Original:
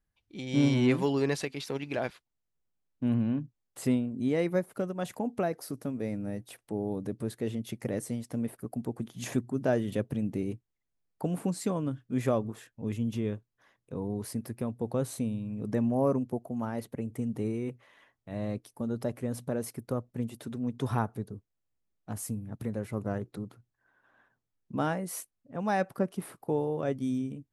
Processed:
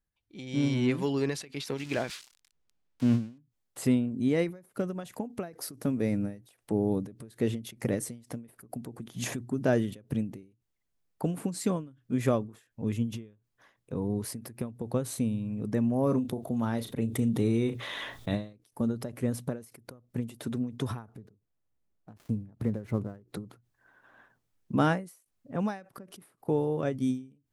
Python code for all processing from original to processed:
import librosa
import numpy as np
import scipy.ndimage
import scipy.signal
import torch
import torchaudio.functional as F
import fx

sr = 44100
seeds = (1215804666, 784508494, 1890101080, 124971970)

y = fx.chain(x, sr, fx.crossing_spikes(level_db=-29.5),
    fx.lowpass(hz=5200.0, slope=12), at=(1.77, 3.38))
y = fx.chain(y, sr, fx.peak_eq(hz=3600.0, db=13.5, octaves=0.24),
    fx.doubler(ms=35.0, db=-13),
    fx.env_flatten(amount_pct=50), at=(16.03, 18.53))
y = fx.chain(y, sr, fx.dead_time(dead_ms=0.07),
    fx.high_shelf(hz=2100.0, db=-10.5), at=(21.09, 23.27))
y = fx.dynamic_eq(y, sr, hz=730.0, q=1.1, threshold_db=-45.0, ratio=4.0, max_db=-4)
y = fx.rider(y, sr, range_db=10, speed_s=2.0)
y = fx.end_taper(y, sr, db_per_s=150.0)
y = F.gain(torch.from_numpy(y), 3.0).numpy()